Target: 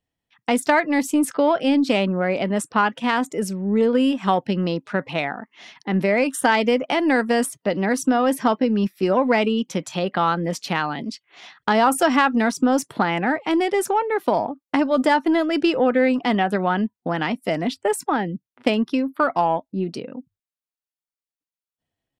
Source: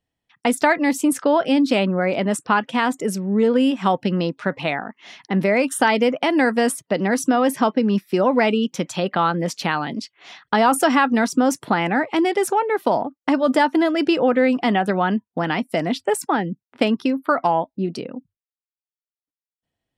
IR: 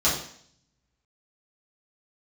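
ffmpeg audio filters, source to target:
-af "aeval=exprs='0.708*(cos(1*acos(clip(val(0)/0.708,-1,1)))-cos(1*PI/2))+0.112*(cos(2*acos(clip(val(0)/0.708,-1,1)))-cos(2*PI/2))+0.0398*(cos(4*acos(clip(val(0)/0.708,-1,1)))-cos(4*PI/2))+0.00794*(cos(7*acos(clip(val(0)/0.708,-1,1)))-cos(7*PI/2))':channel_layout=same,atempo=0.9,volume=-1dB"

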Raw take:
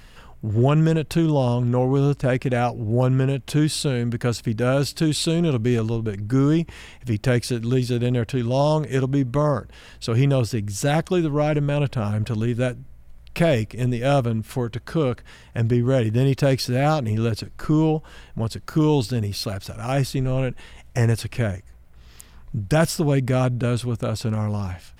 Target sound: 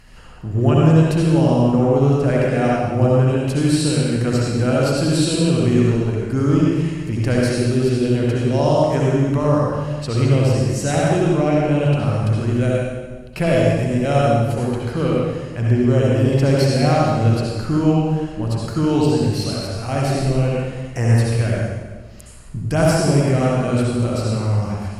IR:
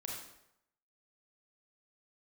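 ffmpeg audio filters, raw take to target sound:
-filter_complex "[0:a]bandreject=frequency=3500:width=7[link_01];[1:a]atrim=start_sample=2205,asetrate=22932,aresample=44100[link_02];[link_01][link_02]afir=irnorm=-1:irlink=0"

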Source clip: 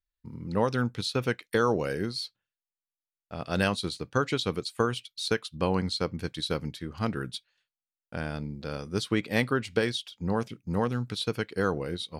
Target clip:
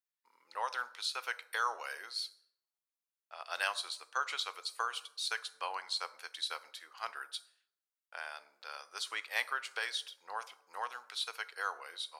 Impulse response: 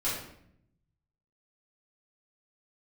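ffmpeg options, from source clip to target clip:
-filter_complex "[0:a]highpass=frequency=820:width=0.5412,highpass=frequency=820:width=1.3066,asplit=2[link_01][link_02];[link_02]equalizer=frequency=3000:width_type=o:width=1.5:gain=-13.5[link_03];[1:a]atrim=start_sample=2205,lowshelf=frequency=390:gain=-10,highshelf=frequency=4800:gain=7[link_04];[link_03][link_04]afir=irnorm=-1:irlink=0,volume=-15.5dB[link_05];[link_01][link_05]amix=inputs=2:normalize=0,volume=-4dB"

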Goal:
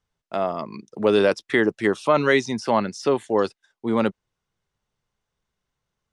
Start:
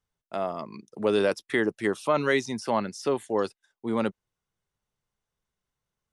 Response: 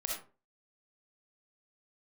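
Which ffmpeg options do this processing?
-af "lowpass=7000,volume=5.5dB"

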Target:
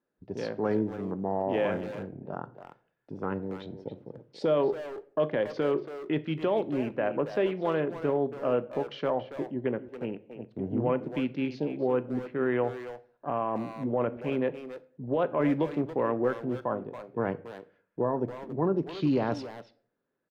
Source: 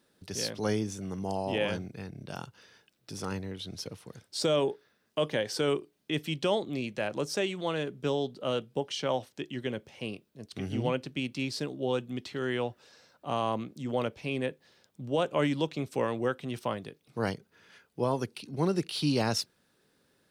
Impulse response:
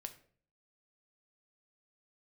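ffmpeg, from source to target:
-filter_complex "[0:a]afwtdn=0.00794,lowpass=1500,equalizer=frequency=82:width=0.89:gain=-9.5,alimiter=limit=-23.5dB:level=0:latency=1:release=16,asplit=2[link_01][link_02];[link_02]adelay=280,highpass=300,lowpass=3400,asoftclip=type=hard:threshold=-33dB,volume=-9dB[link_03];[link_01][link_03]amix=inputs=2:normalize=0,asplit=2[link_04][link_05];[1:a]atrim=start_sample=2205,highshelf=frequency=11000:gain=7.5[link_06];[link_05][link_06]afir=irnorm=-1:irlink=0,volume=3.5dB[link_07];[link_04][link_07]amix=inputs=2:normalize=0"

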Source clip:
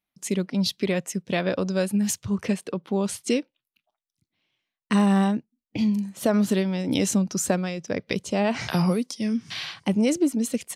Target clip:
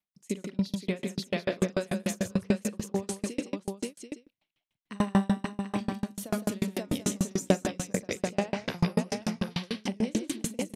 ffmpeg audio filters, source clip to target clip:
ffmpeg -i in.wav -filter_complex "[0:a]asettb=1/sr,asplit=3[link_01][link_02][link_03];[link_01]atrim=end=5.184[link_04];[link_02]atrim=start=5.18:end=6.3,asetpts=PTS-STARTPTS,afade=type=in:duration=0.004:curve=qsin,afade=type=out:start_time=1.116:duration=0.004:curve=qsin,highshelf=frequency=4600:gain=6[link_05];[link_03]atrim=start=6.296[link_06];[link_04][link_05]acrossfade=duration=0.004:curve1=hsin:curve2=qsin[link_07];[link_07][link_06]acrossfade=duration=0.004:curve1=qsin:curve2=hsin,asplit=2[link_08][link_09];[link_09]aecho=0:1:41|122|162|532|736|863:0.398|0.224|0.562|0.473|0.562|0.141[link_10];[link_08][link_10]amix=inputs=2:normalize=0,aeval=exprs='val(0)*pow(10,-35*if(lt(mod(6.8*n/s,1),2*abs(6.8)/1000),1-mod(6.8*n/s,1)/(2*abs(6.8)/1000),(mod(6.8*n/s,1)-2*abs(6.8)/1000)/(1-2*abs(6.8)/1000))/20)':channel_layout=same" out.wav

